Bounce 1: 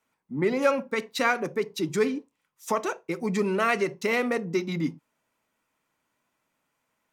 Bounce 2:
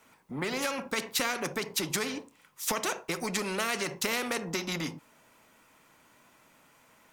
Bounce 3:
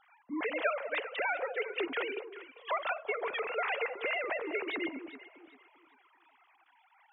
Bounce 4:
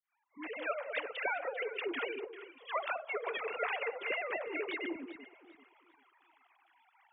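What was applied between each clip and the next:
downward compressor 3 to 1, threshold −27 dBFS, peak gain reduction 8.5 dB; every bin compressed towards the loudest bin 2 to 1; level +1.5 dB
three sine waves on the formant tracks; delay that swaps between a low-pass and a high-pass 197 ms, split 990 Hz, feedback 54%, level −9 dB; level −2.5 dB
fade in at the beginning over 0.91 s; all-pass dispersion lows, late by 79 ms, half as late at 630 Hz; downsampling to 8,000 Hz; level −2.5 dB

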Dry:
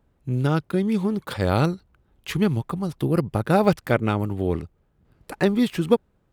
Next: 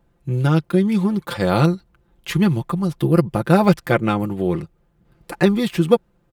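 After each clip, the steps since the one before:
comb filter 5.8 ms, depth 64%
level +2.5 dB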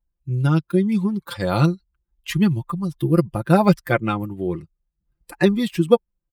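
spectral dynamics exaggerated over time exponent 1.5
level +1 dB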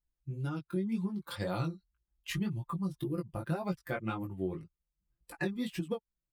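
downward compressor 6 to 1, threshold −22 dBFS, peak gain reduction 13.5 dB
chorus effect 1.9 Hz, delay 16 ms, depth 5.4 ms
level −6 dB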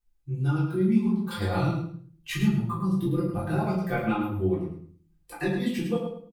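repeating echo 105 ms, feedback 21%, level −7.5 dB
rectangular room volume 310 cubic metres, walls furnished, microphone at 3.6 metres

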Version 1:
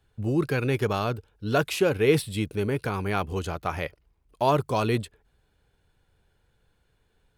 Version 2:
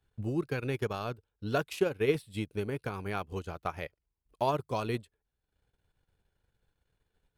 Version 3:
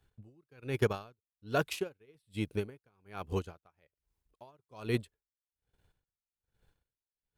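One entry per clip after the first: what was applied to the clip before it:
transient designer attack +5 dB, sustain −10 dB; level −9 dB
tremolo with a sine in dB 1.2 Hz, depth 39 dB; level +5 dB

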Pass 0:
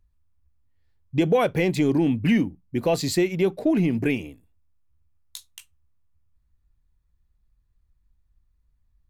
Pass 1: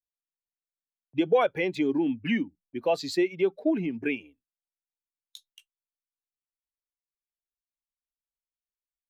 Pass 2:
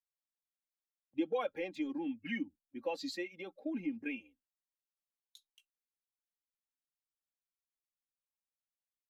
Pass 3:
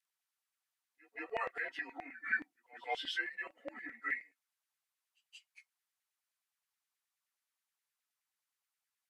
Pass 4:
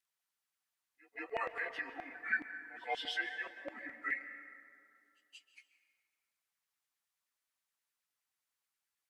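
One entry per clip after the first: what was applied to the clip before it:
spectral dynamics exaggerated over time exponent 1.5; noise gate −56 dBFS, range −17 dB; three-way crossover with the lows and the highs turned down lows −20 dB, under 240 Hz, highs −14 dB, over 5,000 Hz
harmonic and percussive parts rebalanced harmonic −15 dB; comb filter 3.7 ms, depth 68%; harmonic and percussive parts rebalanced percussive −12 dB; level −2 dB
partials spread apart or drawn together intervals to 90%; auto-filter high-pass saw down 9.5 Hz 720–2,100 Hz; echo ahead of the sound 178 ms −21 dB; level +5.5 dB
dense smooth reverb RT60 2.4 s, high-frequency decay 0.5×, pre-delay 120 ms, DRR 10.5 dB

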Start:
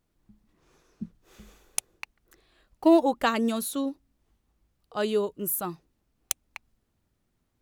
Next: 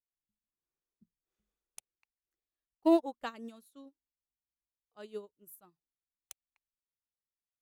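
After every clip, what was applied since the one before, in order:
expander for the loud parts 2.5 to 1, over −36 dBFS
level −5.5 dB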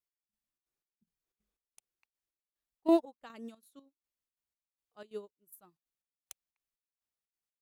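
gate pattern "x...xxx.x" 182 BPM −12 dB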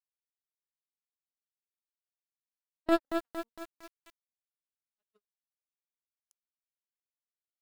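power curve on the samples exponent 3
feedback echo at a low word length 229 ms, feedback 55%, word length 8 bits, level −6 dB
level +4.5 dB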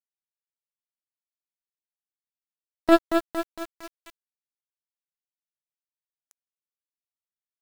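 bit reduction 9 bits
level +9 dB

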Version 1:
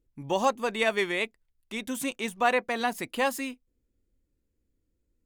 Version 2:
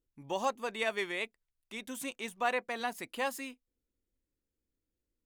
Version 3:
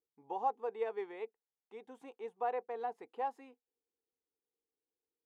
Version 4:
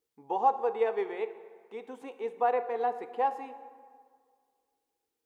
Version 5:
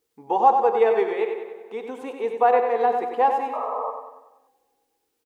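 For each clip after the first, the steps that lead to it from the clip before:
low-shelf EQ 260 Hz −6.5 dB; level −6.5 dB
pair of resonant band-passes 600 Hz, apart 0.78 octaves; level +3.5 dB
dense smooth reverb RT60 1.9 s, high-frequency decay 0.6×, DRR 10.5 dB; level +8.5 dB
sound drawn into the spectrogram noise, 0:03.53–0:03.91, 430–1,300 Hz −37 dBFS; on a send: repeating echo 95 ms, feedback 50%, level −7 dB; on the sum: level +8.5 dB

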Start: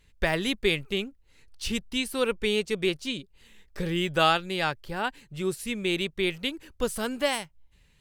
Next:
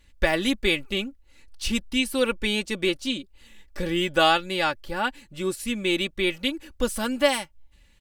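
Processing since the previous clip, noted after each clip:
comb filter 3.5 ms, depth 61%
level +2 dB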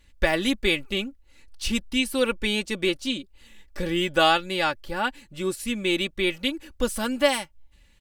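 no processing that can be heard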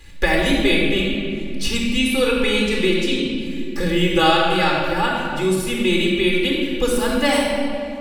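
rectangular room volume 2,700 cubic metres, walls mixed, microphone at 4 metres
multiband upward and downward compressor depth 40%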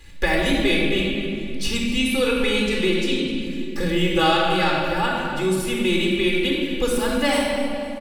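in parallel at −7 dB: soft clipping −13.5 dBFS, distortion −15 dB
on the sum: repeating echo 253 ms, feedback 46%, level −15 dB
level −5 dB

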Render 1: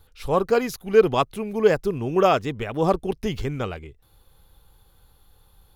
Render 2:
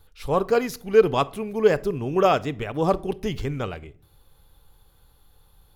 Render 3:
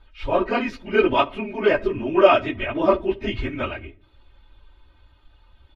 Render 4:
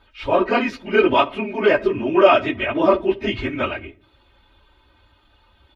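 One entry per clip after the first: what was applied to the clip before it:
rectangular room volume 700 cubic metres, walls furnished, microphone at 0.34 metres; level −1 dB
random phases in long frames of 50 ms; low-pass with resonance 2,600 Hz, resonance Q 2; comb filter 3.2 ms, depth 87%
high-pass filter 140 Hz 6 dB per octave; in parallel at +1 dB: brickwall limiter −12 dBFS, peak gain reduction 10 dB; on the sum: level −2 dB

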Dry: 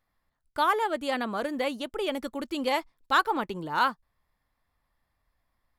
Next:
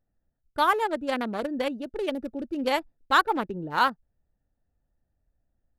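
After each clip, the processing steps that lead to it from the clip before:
adaptive Wiener filter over 41 samples
level +3 dB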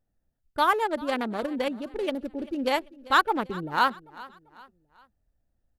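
repeating echo 392 ms, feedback 42%, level −20 dB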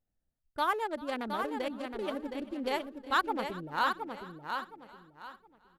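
repeating echo 717 ms, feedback 27%, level −6 dB
level −7.5 dB

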